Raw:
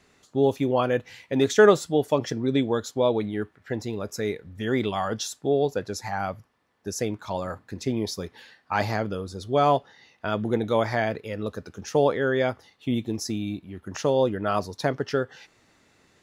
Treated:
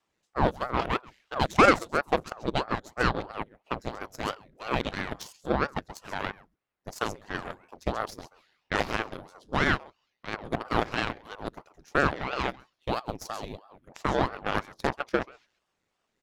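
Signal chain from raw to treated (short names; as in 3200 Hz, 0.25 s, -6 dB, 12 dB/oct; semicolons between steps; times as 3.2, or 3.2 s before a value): in parallel at 0 dB: vocal rider within 5 dB 0.5 s; on the sum: echo 0.133 s -11 dB; added harmonics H 4 -18 dB, 6 -28 dB, 7 -18 dB, 8 -37 dB, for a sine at -1 dBFS; ring modulator with a swept carrier 530 Hz, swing 90%, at 3 Hz; gain -4 dB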